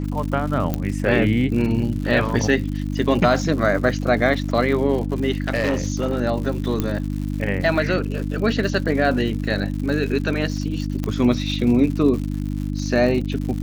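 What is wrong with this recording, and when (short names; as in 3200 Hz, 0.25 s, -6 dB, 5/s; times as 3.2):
crackle 150/s -29 dBFS
hum 50 Hz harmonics 6 -25 dBFS
0.74 pop -9 dBFS
5.46–6.22 clipped -15.5 dBFS
6.8 pop -9 dBFS
11.04 pop -12 dBFS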